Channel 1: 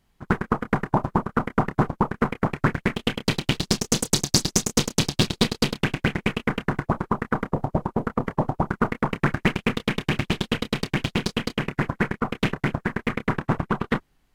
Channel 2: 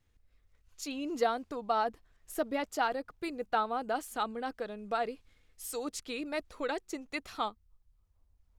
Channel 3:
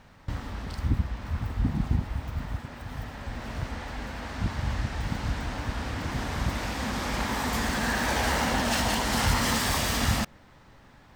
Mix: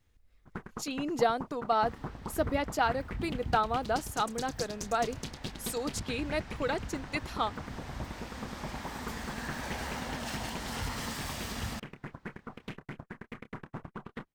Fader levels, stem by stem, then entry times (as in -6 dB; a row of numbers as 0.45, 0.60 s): -19.0, +2.5, -12.0 dB; 0.25, 0.00, 1.55 s